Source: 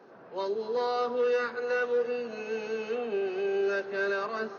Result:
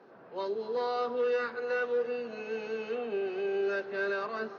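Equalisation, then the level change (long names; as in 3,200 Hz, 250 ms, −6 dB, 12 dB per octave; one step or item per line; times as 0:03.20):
high-frequency loss of the air 210 metres
high-shelf EQ 4,600 Hz +12 dB
−2.0 dB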